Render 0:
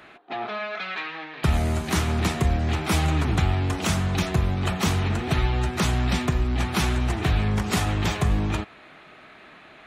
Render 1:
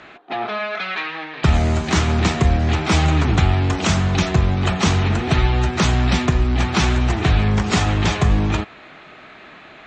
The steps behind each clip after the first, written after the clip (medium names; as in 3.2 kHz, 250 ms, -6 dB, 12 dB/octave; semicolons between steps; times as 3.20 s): steep low-pass 7.6 kHz 48 dB/octave; trim +6 dB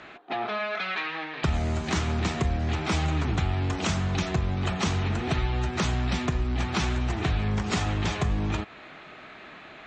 compression 2:1, threshold -24 dBFS, peak gain reduction 8 dB; trim -3.5 dB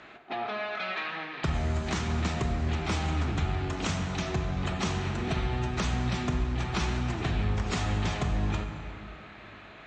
reverberation RT60 2.8 s, pre-delay 23 ms, DRR 5.5 dB; trim -4 dB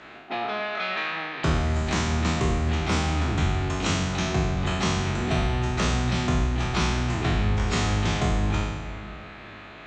spectral sustain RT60 1.16 s; trim +2.5 dB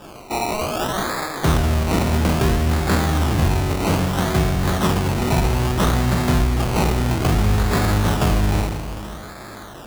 decimation with a swept rate 21×, swing 60% 0.61 Hz; trim +6 dB